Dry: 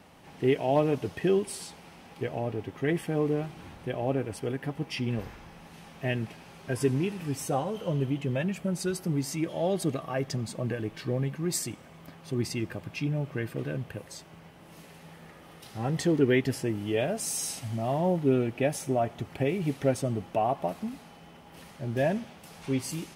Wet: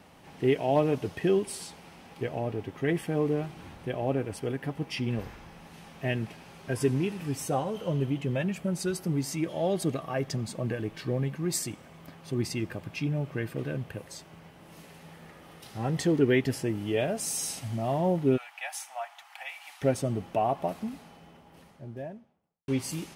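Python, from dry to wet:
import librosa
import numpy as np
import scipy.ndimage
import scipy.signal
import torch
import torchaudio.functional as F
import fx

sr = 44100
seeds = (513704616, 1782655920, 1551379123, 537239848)

y = fx.ellip_highpass(x, sr, hz=780.0, order=4, stop_db=50, at=(18.36, 19.81), fade=0.02)
y = fx.studio_fade_out(y, sr, start_s=20.74, length_s=1.94)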